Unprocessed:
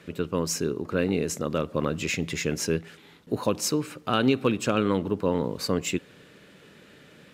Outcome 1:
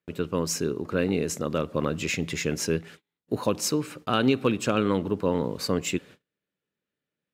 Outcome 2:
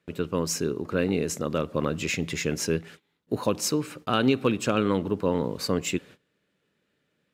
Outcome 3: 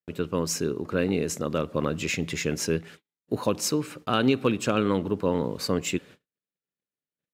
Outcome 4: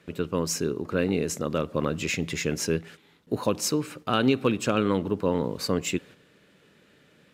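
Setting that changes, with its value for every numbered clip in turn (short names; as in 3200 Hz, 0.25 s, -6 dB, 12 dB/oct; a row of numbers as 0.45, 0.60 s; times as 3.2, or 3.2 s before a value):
gate, range: -36, -22, -49, -7 dB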